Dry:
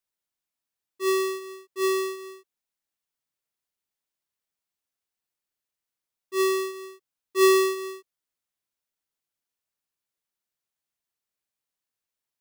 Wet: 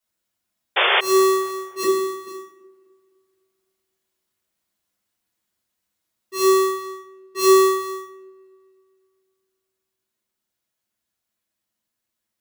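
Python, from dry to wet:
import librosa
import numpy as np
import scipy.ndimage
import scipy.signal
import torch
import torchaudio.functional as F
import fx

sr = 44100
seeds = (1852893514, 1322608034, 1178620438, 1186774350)

y = fx.rider(x, sr, range_db=5, speed_s=0.5)
y = fx.comb_fb(y, sr, f0_hz=200.0, decay_s=0.18, harmonics='all', damping=0.0, mix_pct=70, at=(1.83, 2.27))
y = fx.high_shelf(y, sr, hz=10000.0, db=-5.5, at=(6.76, 7.39))
y = fx.rev_fdn(y, sr, rt60_s=0.6, lf_ratio=1.5, hf_ratio=0.8, size_ms=28.0, drr_db=-8.5)
y = fx.spec_paint(y, sr, seeds[0], shape='noise', start_s=0.76, length_s=0.25, low_hz=360.0, high_hz=3600.0, level_db=-17.0)
y = fx.echo_wet_lowpass(y, sr, ms=255, feedback_pct=46, hz=1300.0, wet_db=-20.5)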